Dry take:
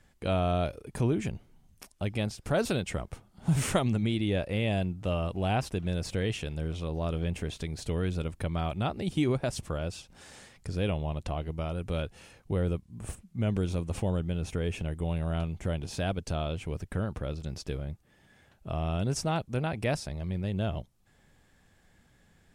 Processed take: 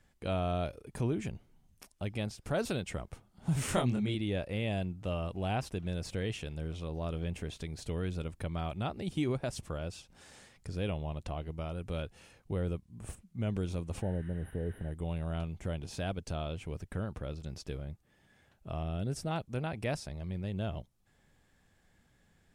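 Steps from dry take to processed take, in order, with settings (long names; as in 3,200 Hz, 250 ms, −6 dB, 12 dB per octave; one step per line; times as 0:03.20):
0:03.66–0:04.15: double-tracking delay 24 ms −3 dB
0:14.04–0:14.88: healed spectral selection 910–9,400 Hz after
0:18.83–0:19.31: graphic EQ with 15 bands 1,000 Hz −8 dB, 2,500 Hz −4 dB, 6,300 Hz −7 dB
level −5 dB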